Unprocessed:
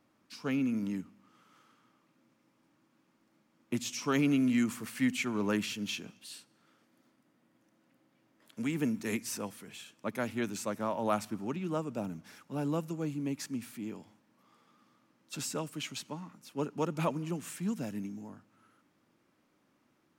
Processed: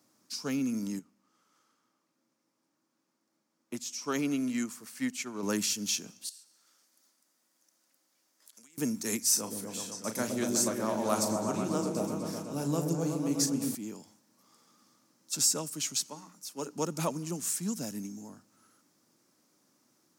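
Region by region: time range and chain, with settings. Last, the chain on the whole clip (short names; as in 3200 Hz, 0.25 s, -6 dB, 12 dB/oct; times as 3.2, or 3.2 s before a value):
0.99–5.43 tone controls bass -6 dB, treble -7 dB + upward expander, over -41 dBFS
6.29–8.78 HPF 1300 Hz 6 dB/oct + compressor 10:1, threshold -59 dBFS
9.3–13.75 doubler 36 ms -9 dB + repeats that get brighter 0.123 s, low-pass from 400 Hz, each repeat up 1 oct, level 0 dB
16.06–16.71 HPF 330 Hz 6 dB/oct + notches 60/120/180/240/300/360/420/480/540 Hz
whole clip: HPF 120 Hz; resonant high shelf 4000 Hz +11.5 dB, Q 1.5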